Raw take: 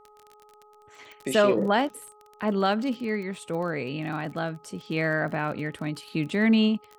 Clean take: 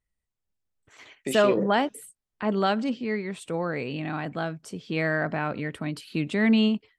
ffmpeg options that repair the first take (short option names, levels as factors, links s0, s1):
-af "adeclick=t=4,bandreject=f=420.9:t=h:w=4,bandreject=f=841.8:t=h:w=4,bandreject=f=1262.7:t=h:w=4"